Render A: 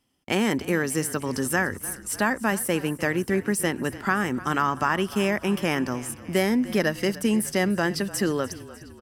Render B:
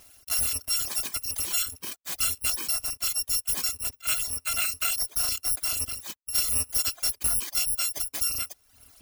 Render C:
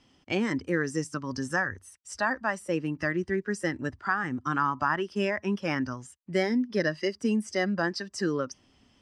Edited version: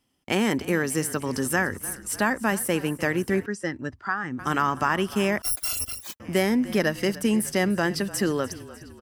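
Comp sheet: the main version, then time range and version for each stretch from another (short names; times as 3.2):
A
3.46–4.39 from C
5.42–6.2 from B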